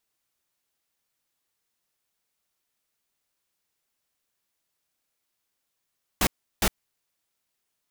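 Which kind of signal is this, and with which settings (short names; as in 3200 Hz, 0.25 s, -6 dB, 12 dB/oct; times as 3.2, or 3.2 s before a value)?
noise bursts pink, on 0.06 s, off 0.35 s, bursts 2, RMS -21.5 dBFS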